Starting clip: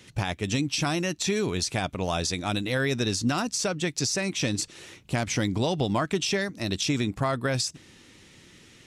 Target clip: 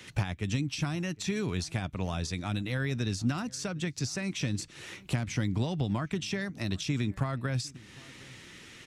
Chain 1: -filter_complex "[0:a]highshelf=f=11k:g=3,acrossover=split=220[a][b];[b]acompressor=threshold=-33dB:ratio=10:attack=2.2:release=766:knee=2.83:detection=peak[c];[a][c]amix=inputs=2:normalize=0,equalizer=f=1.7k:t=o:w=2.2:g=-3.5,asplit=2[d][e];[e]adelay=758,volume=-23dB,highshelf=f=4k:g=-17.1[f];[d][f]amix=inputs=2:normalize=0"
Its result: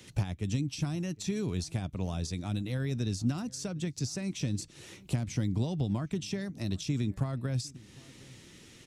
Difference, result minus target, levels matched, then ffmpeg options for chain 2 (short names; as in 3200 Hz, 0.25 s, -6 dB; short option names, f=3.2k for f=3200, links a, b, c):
2000 Hz band -7.5 dB
-filter_complex "[0:a]highshelf=f=11k:g=3,acrossover=split=220[a][b];[b]acompressor=threshold=-33dB:ratio=10:attack=2.2:release=766:knee=2.83:detection=peak[c];[a][c]amix=inputs=2:normalize=0,equalizer=f=1.7k:t=o:w=2.2:g=6,asplit=2[d][e];[e]adelay=758,volume=-23dB,highshelf=f=4k:g=-17.1[f];[d][f]amix=inputs=2:normalize=0"